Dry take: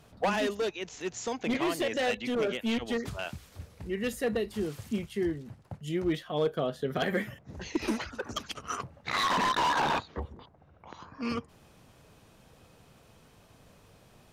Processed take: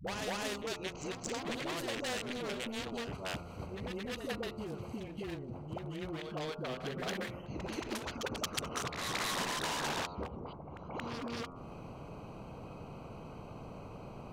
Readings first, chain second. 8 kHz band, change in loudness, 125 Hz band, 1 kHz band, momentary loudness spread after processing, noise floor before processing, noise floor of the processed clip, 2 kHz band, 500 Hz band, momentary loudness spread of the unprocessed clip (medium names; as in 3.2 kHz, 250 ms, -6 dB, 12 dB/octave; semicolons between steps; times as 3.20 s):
0.0 dB, -8.0 dB, -3.0 dB, -8.5 dB, 13 LU, -59 dBFS, -48 dBFS, -5.5 dB, -8.0 dB, 14 LU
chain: local Wiener filter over 25 samples; peaking EQ 160 Hz +6.5 dB 1.3 oct; de-hum 87.76 Hz, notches 16; reverse echo 227 ms -16 dB; compression 6:1, threshold -40 dBFS, peak gain reduction 16.5 dB; phase dispersion highs, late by 73 ms, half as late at 370 Hz; dynamic bell 470 Hz, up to +5 dB, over -58 dBFS, Q 1.3; spectrum-flattening compressor 2:1; trim +6 dB